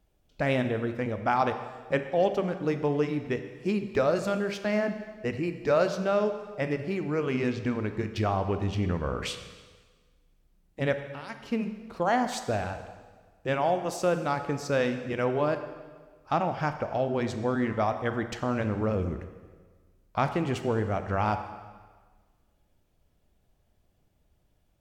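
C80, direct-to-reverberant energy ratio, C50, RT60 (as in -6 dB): 10.5 dB, 8.0 dB, 9.0 dB, 1.5 s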